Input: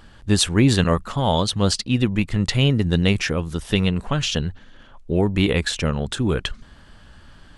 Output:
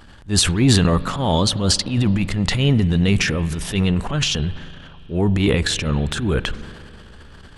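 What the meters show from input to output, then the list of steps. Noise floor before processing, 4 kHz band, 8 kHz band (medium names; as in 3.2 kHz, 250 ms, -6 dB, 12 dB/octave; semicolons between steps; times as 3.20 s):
-48 dBFS, +2.5 dB, +4.5 dB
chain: transient shaper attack -10 dB, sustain +8 dB; spring tank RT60 3.1 s, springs 41 ms, chirp 60 ms, DRR 16 dB; trim +2 dB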